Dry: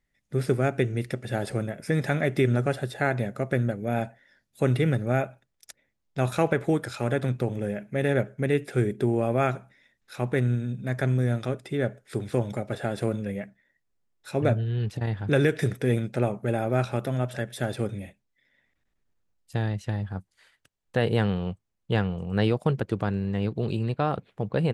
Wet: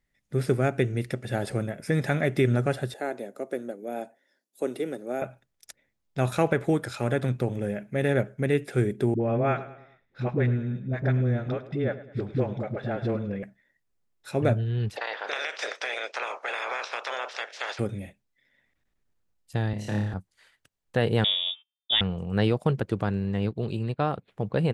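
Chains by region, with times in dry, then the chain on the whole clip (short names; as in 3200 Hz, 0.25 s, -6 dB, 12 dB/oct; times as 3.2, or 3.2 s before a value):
2.94–5.22 HPF 290 Hz 24 dB/oct + bell 1900 Hz -11 dB 2.6 oct
9.14–13.43 air absorption 230 m + dispersion highs, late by 69 ms, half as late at 400 Hz + feedback echo 0.104 s, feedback 47%, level -16 dB
14.95–17.78 spectral limiter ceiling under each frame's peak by 28 dB + Chebyshev band-pass 490–5700 Hz, order 3 + compressor 10:1, threshold -26 dBFS
19.73–20.14 HPF 130 Hz 24 dB/oct + flutter echo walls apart 4.9 m, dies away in 0.72 s
21.24–22.01 de-hum 75.13 Hz, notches 36 + gate -56 dBFS, range -24 dB + inverted band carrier 3600 Hz
23.51–24.28 notch 6000 Hz, Q 10 + upward expander, over -44 dBFS
whole clip: dry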